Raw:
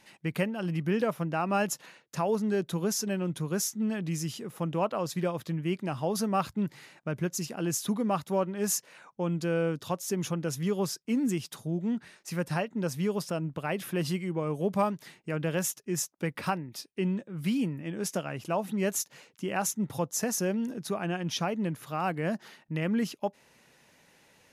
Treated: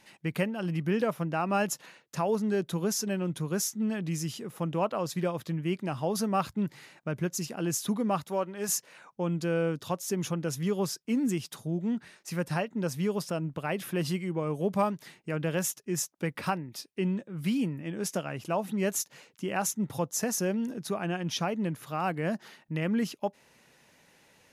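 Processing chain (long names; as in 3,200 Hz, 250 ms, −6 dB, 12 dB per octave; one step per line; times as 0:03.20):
0:08.28–0:08.69: low-shelf EQ 260 Hz −10.5 dB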